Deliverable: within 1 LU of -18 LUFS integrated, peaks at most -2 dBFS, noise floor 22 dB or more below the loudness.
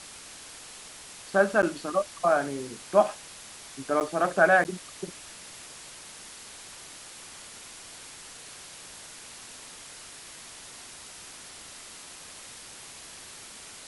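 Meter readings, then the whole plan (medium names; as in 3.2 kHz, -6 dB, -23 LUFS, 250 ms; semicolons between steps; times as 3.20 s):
dropouts 3; longest dropout 9.3 ms; noise floor -46 dBFS; noise floor target -48 dBFS; loudness -26.0 LUFS; peak level -7.0 dBFS; loudness target -18.0 LUFS
-> interpolate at 1.62/4.00/4.64 s, 9.3 ms; noise reduction 6 dB, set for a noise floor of -46 dBFS; trim +8 dB; peak limiter -2 dBFS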